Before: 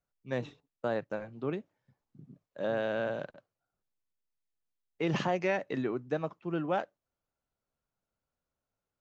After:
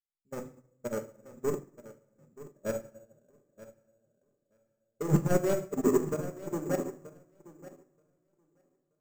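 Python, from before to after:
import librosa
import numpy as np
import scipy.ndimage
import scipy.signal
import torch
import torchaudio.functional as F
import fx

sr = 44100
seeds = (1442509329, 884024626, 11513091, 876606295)

y = scipy.signal.medfilt(x, 15)
y = fx.lowpass(y, sr, hz=3900.0, slope=6)
y = fx.low_shelf_res(y, sr, hz=640.0, db=9.0, q=1.5)
y = fx.level_steps(y, sr, step_db=23)
y = 10.0 ** (-26.0 / 20.0) * np.tanh(y / 10.0 ** (-26.0 / 20.0))
y = fx.echo_feedback(y, sr, ms=929, feedback_pct=34, wet_db=-7)
y = fx.room_shoebox(y, sr, seeds[0], volume_m3=710.0, walls='mixed', distance_m=1.3)
y = np.repeat(y[::6], 6)[:len(y)]
y = fx.upward_expand(y, sr, threshold_db=-43.0, expansion=2.5)
y = y * librosa.db_to_amplitude(5.5)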